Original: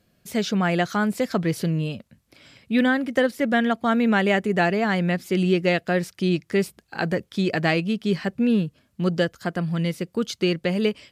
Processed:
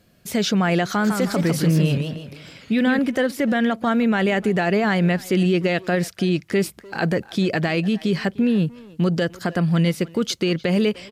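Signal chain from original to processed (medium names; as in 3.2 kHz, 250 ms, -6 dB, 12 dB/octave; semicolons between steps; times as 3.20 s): peak limiter -18.5 dBFS, peak gain reduction 11 dB; speakerphone echo 300 ms, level -17 dB; 0.88–2.99 s: modulated delay 159 ms, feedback 38%, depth 200 cents, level -5.5 dB; trim +6.5 dB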